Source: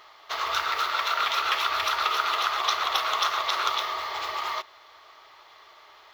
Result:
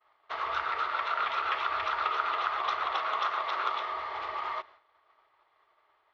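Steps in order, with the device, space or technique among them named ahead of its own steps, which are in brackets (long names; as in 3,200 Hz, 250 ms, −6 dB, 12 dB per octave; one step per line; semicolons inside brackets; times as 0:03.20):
hearing-loss simulation (low-pass filter 2,100 Hz 12 dB per octave; downward expander −44 dBFS)
0:02.92–0:03.89: high-pass filter 120 Hz 12 dB per octave
level −3 dB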